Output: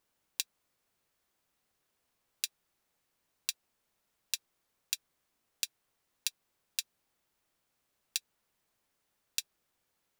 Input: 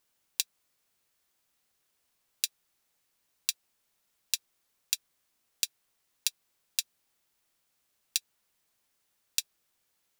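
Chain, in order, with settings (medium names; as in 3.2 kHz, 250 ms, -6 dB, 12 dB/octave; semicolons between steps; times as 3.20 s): treble shelf 2 kHz -7.5 dB; trim +2 dB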